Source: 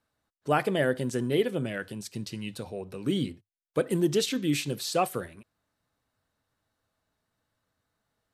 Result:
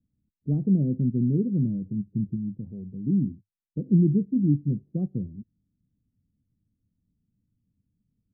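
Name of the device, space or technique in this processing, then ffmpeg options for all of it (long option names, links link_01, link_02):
the neighbour's flat through the wall: -filter_complex "[0:a]asettb=1/sr,asplit=3[link_01][link_02][link_03];[link_01]atrim=end=2.364[link_04];[link_02]atrim=start=2.36:end=3.87,asetpts=PTS-STARTPTS,afade=type=in:duration=0.004:curve=qsin,afade=type=out:start_time=1.506:duration=0.004:curve=qsin,tiltshelf=frequency=1300:gain=-4.5[link_05];[link_03]atrim=start=3.866[link_06];[link_04][link_05]acrossfade=duration=0.004:curve1=hsin:curve2=qsin[link_07];[link_07][link_06]acrossfade=duration=0.004:curve1=qsin:curve2=hsin,lowpass=frequency=250:width=0.5412,lowpass=frequency=250:width=1.3066,equalizer=frequency=190:width_type=o:width=0.47:gain=5,volume=8.5dB"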